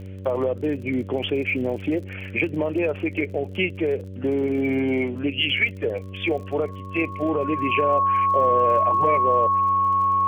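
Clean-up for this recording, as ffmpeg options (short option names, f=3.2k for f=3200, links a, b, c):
-af "adeclick=t=4,bandreject=f=95.3:t=h:w=4,bandreject=f=190.6:t=h:w=4,bandreject=f=285.9:t=h:w=4,bandreject=f=381.2:t=h:w=4,bandreject=f=476.5:t=h:w=4,bandreject=f=571.8:t=h:w=4,bandreject=f=1.1k:w=30,agate=range=-21dB:threshold=-27dB"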